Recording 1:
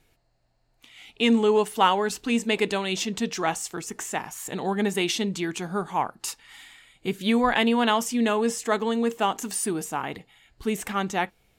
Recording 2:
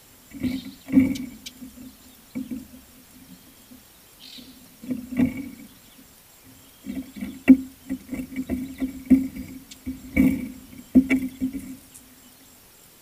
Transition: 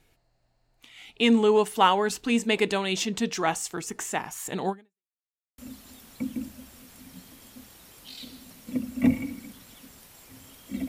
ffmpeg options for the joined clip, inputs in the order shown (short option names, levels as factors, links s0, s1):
-filter_complex "[0:a]apad=whole_dur=10.88,atrim=end=10.88,asplit=2[s0][s1];[s0]atrim=end=5.09,asetpts=PTS-STARTPTS,afade=t=out:st=4.69:d=0.4:c=exp[s2];[s1]atrim=start=5.09:end=5.58,asetpts=PTS-STARTPTS,volume=0[s3];[1:a]atrim=start=1.73:end=7.03,asetpts=PTS-STARTPTS,afade=t=in:d=0.004:c=hsin[s4];[s2][s3][s4]concat=n=3:v=0:a=1"